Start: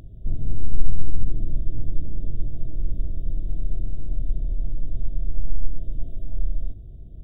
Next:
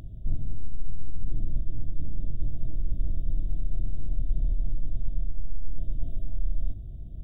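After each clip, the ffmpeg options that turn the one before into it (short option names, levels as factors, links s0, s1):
-af "areverse,acompressor=threshold=0.112:ratio=6,areverse,equalizer=f=430:w=2.2:g=-7,volume=1.19"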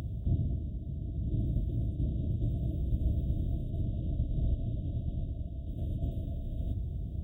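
-af "highpass=f=55:w=0.5412,highpass=f=55:w=1.3066,volume=2.24"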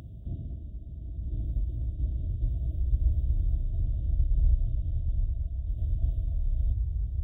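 -af "asubboost=boost=10.5:cutoff=67,volume=0.473"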